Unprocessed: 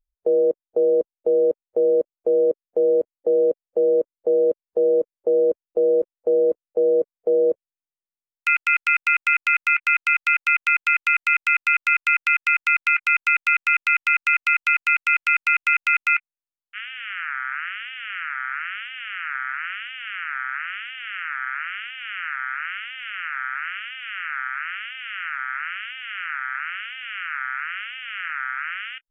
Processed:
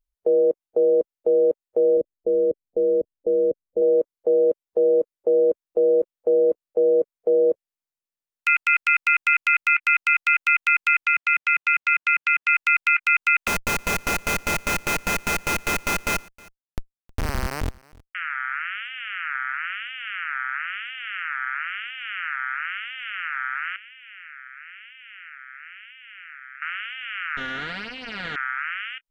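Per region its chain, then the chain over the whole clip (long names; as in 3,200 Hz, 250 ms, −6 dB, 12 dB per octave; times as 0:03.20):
0:01.97–0:03.82: Gaussian smoothing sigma 13 samples + low-shelf EQ 160 Hz +12 dB
0:11.05–0:12.49: high-pass filter 170 Hz + high-frequency loss of the air 110 metres
0:13.47–0:18.15: comparator with hysteresis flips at −19.5 dBFS + single-tap delay 315 ms −24 dB
0:23.76–0:26.62: first difference + phaser with its sweep stopped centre 1,900 Hz, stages 4
0:27.37–0:28.36: lower of the sound and its delayed copy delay 4.2 ms + low-pass filter 3,900 Hz
whole clip: no processing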